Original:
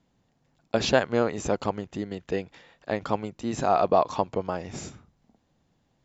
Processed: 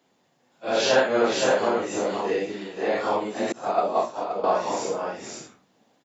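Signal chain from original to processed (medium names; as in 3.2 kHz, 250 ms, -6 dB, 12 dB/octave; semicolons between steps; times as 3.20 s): phase randomisation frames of 200 ms; delay 522 ms -4.5 dB; 3.52–4.44 s: expander -15 dBFS; high-pass 290 Hz 12 dB/octave; in parallel at +0.5 dB: compression, threshold -33 dBFS, peak gain reduction 15 dB; on the sum: trim +1.5 dB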